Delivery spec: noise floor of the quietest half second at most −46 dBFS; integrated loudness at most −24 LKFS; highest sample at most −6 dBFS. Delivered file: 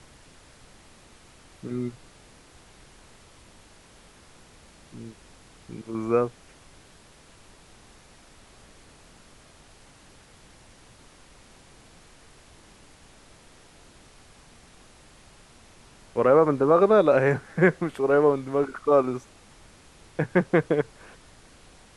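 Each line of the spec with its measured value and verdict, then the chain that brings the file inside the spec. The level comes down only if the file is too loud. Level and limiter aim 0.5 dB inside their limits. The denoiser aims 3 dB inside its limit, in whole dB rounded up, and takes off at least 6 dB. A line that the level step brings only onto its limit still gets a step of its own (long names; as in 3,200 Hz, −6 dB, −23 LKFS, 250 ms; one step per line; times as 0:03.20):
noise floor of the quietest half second −53 dBFS: in spec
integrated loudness −23.0 LKFS: out of spec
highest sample −5.0 dBFS: out of spec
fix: level −1.5 dB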